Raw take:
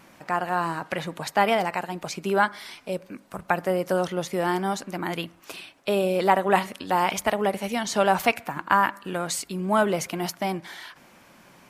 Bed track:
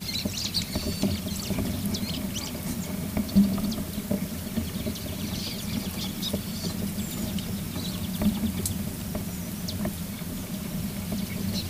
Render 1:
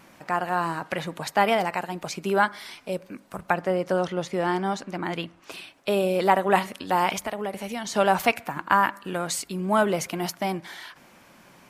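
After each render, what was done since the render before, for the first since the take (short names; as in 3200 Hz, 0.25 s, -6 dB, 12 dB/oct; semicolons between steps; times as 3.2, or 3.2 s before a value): 3.53–5.52 air absorption 57 m; 7.18–7.95 compressor 2:1, threshold -31 dBFS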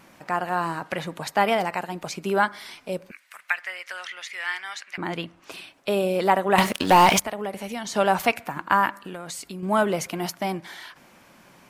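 3.11–4.98 resonant high-pass 2000 Hz, resonance Q 3; 6.58–7.2 sample leveller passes 3; 9.06–9.63 compressor 4:1, threshold -32 dBFS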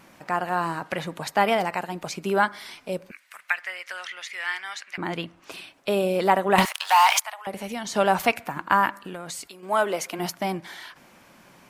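6.65–7.47 steep high-pass 790 Hz; 9.46–10.18 HPF 590 Hz -> 280 Hz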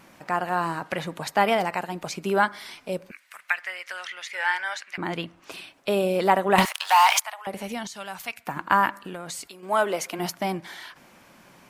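4.33–4.78 small resonant body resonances 580/860/1500 Hz, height 16 dB; 7.87–8.47 passive tone stack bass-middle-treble 5-5-5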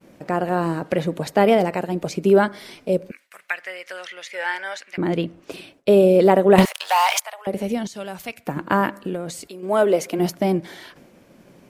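expander -48 dBFS; resonant low shelf 680 Hz +9 dB, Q 1.5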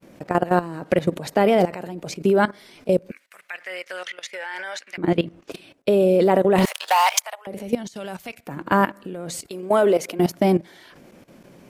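in parallel at -2 dB: limiter -10.5 dBFS, peak gain reduction 8 dB; on the sum: level quantiser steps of 16 dB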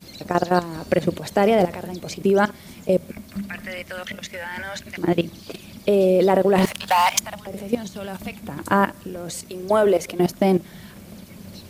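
add bed track -11 dB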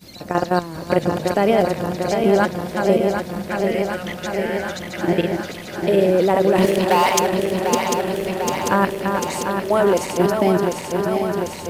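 regenerating reverse delay 0.373 s, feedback 85%, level -5.5 dB; pre-echo 0.146 s -23 dB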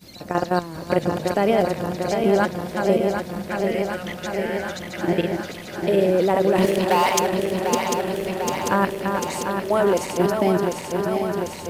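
gain -2.5 dB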